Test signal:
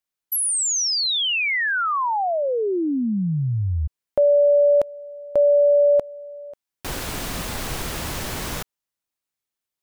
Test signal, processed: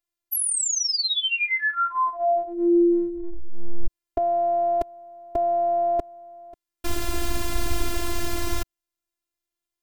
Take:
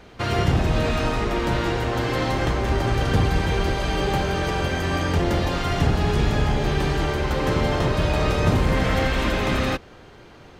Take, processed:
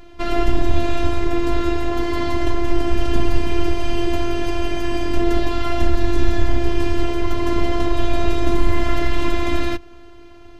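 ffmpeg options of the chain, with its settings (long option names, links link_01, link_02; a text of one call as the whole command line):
ffmpeg -i in.wav -af "afftfilt=real='hypot(re,im)*cos(PI*b)':imag='0':win_size=512:overlap=0.75,lowshelf=frequency=270:gain=12,volume=1.5dB" out.wav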